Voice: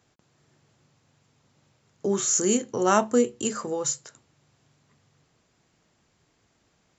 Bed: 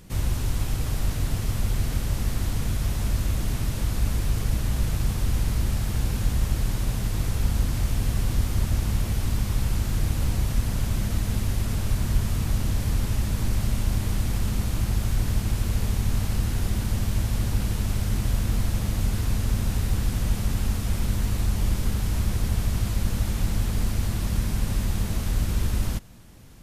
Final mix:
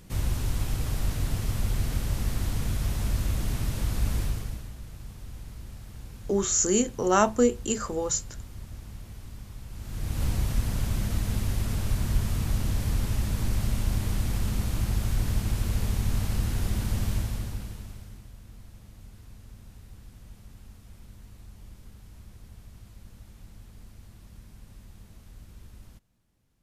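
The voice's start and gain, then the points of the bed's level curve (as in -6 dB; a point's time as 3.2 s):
4.25 s, -0.5 dB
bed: 4.22 s -2.5 dB
4.76 s -17.5 dB
9.68 s -17.5 dB
10.23 s -2.5 dB
17.12 s -2.5 dB
18.31 s -23.5 dB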